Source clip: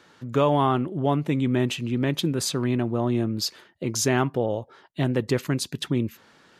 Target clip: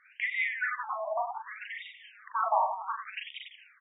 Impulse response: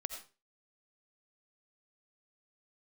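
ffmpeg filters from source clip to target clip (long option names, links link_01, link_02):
-af "aecho=1:1:70|168|305.2|497.3|766.2:0.631|0.398|0.251|0.158|0.1,asetrate=76440,aresample=44100,afftfilt=real='re*between(b*sr/1024,830*pow(2700/830,0.5+0.5*sin(2*PI*0.66*pts/sr))/1.41,830*pow(2700/830,0.5+0.5*sin(2*PI*0.66*pts/sr))*1.41)':imag='im*between(b*sr/1024,830*pow(2700/830,0.5+0.5*sin(2*PI*0.66*pts/sr))/1.41,830*pow(2700/830,0.5+0.5*sin(2*PI*0.66*pts/sr))*1.41)':win_size=1024:overlap=0.75"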